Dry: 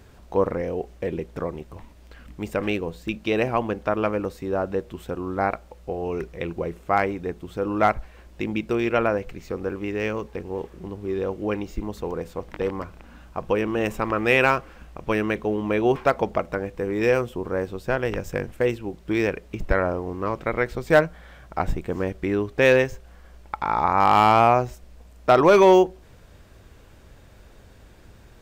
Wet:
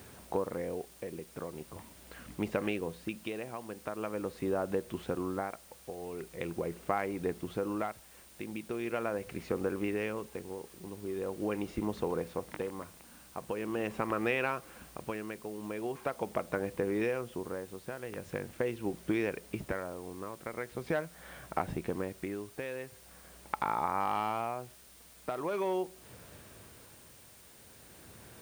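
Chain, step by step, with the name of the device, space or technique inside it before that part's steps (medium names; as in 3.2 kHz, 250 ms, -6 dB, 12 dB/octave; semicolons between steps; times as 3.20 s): medium wave at night (band-pass 110–4100 Hz; compression, threshold -28 dBFS, peak gain reduction 16.5 dB; tremolo 0.42 Hz, depth 67%; whistle 9 kHz -63 dBFS; white noise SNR 21 dB)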